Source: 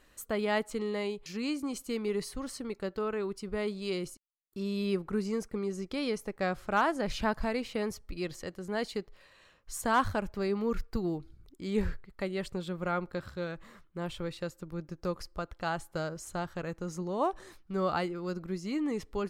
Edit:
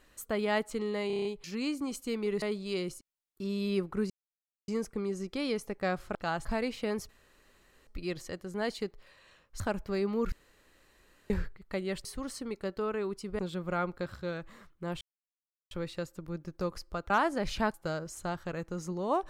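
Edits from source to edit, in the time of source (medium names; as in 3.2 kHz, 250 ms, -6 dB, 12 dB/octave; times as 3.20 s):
1.07 s: stutter 0.03 s, 7 plays
2.24–3.58 s: move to 12.53 s
5.26 s: insert silence 0.58 s
6.73–7.37 s: swap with 15.54–15.84 s
8.01 s: insert room tone 0.78 s
9.74–10.08 s: delete
10.80–11.78 s: room tone
14.15 s: insert silence 0.70 s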